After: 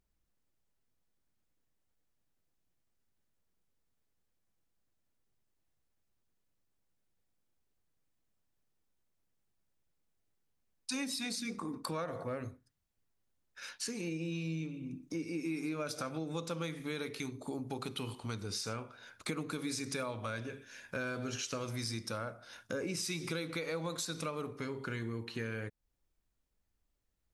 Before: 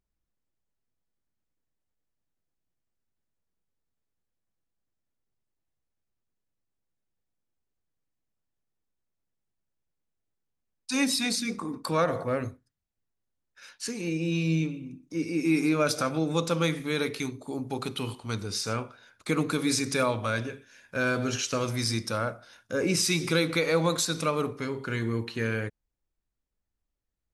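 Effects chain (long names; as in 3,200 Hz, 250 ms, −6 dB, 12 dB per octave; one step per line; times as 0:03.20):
downward compressor 4 to 1, threshold −41 dBFS, peak gain reduction 17.5 dB
level +3 dB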